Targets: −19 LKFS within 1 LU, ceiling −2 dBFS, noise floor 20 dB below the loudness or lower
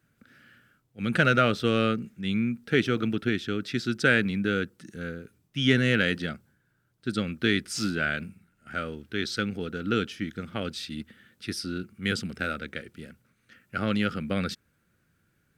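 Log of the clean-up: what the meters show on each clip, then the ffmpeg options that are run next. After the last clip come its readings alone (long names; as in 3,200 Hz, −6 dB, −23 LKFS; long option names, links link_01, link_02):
integrated loudness −28.0 LKFS; sample peak −8.0 dBFS; target loudness −19.0 LKFS
→ -af "volume=9dB,alimiter=limit=-2dB:level=0:latency=1"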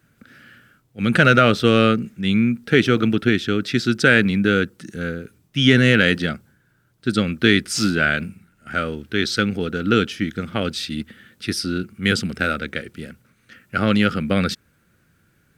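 integrated loudness −19.5 LKFS; sample peak −2.0 dBFS; background noise floor −62 dBFS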